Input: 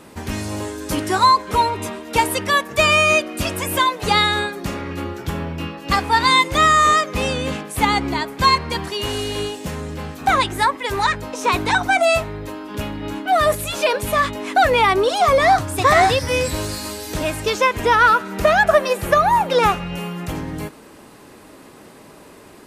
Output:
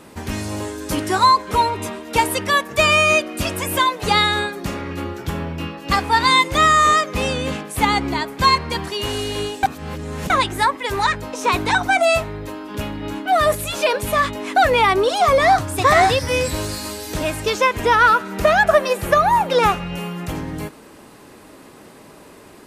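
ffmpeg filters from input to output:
-filter_complex "[0:a]asplit=3[a][b][c];[a]atrim=end=9.632[d];[b]atrim=start=9.628:end=10.302,asetpts=PTS-STARTPTS,areverse[e];[c]atrim=start=10.298[f];[d][e]acrossfade=d=0.004:c1=hsin:c2=hsin[g];[g][f]acrossfade=d=0.004:c1=hsin:c2=hsin"

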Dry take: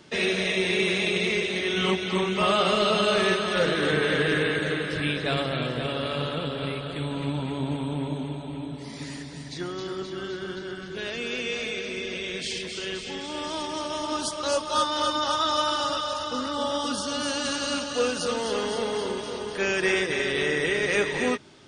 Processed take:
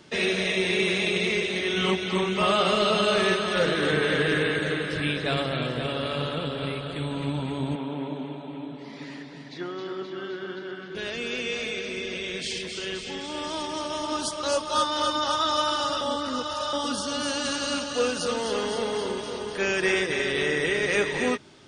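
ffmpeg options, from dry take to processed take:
-filter_complex "[0:a]asettb=1/sr,asplit=3[a][b][c];[a]atrim=end=7.754[d];[b]atrim=start=7.75:end=10.95,asetpts=PTS-STARTPTS,afade=t=in:d=0.004:c=qsin,afade=t=out:st=3.196:d=0.004:c=qsin,highpass=210,lowpass=3.3k[e];[c]atrim=start=10.946[f];[d][e]acrossfade=d=0.004:c1=hsin:c2=qsin[g];[g][f]acrossfade=d=0.004:c1=qsin:c2=hsin,asplit=3[h][i][j];[h]atrim=end=16.012[k];[i]atrim=start=16.008:end=16.732,asetpts=PTS-STARTPTS,areverse[l];[j]atrim=start=16.728[m];[k][l]acrossfade=d=0.004:c1=hsin:c2=hsin[n];[n][m]acrossfade=d=0.004:c1=hsin:c2=hsin"

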